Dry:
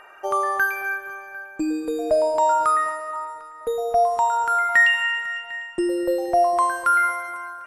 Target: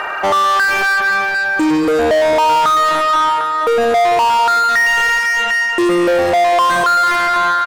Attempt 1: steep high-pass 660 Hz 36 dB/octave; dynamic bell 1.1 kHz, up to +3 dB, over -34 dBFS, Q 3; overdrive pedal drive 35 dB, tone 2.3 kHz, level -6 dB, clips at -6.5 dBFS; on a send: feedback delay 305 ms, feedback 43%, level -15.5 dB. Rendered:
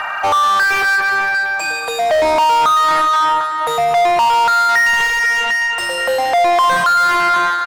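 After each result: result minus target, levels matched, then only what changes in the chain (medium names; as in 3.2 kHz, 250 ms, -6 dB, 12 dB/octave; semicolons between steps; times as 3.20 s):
echo 143 ms early; 500 Hz band -2.5 dB
change: feedback delay 448 ms, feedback 43%, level -15.5 dB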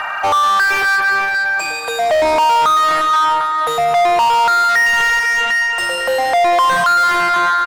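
500 Hz band -2.5 dB
remove: steep high-pass 660 Hz 36 dB/octave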